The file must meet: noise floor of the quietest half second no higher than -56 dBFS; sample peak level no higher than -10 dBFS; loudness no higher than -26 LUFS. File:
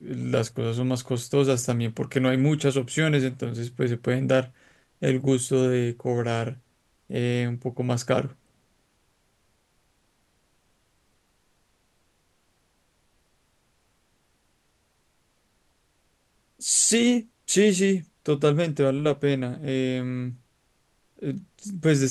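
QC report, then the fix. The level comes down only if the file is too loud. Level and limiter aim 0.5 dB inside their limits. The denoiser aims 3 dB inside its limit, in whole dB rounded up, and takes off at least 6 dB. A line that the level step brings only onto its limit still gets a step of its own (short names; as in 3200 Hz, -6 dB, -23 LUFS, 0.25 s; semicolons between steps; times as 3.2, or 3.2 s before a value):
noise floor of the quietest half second -68 dBFS: OK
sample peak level -7.5 dBFS: fail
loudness -24.5 LUFS: fail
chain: gain -2 dB; limiter -10.5 dBFS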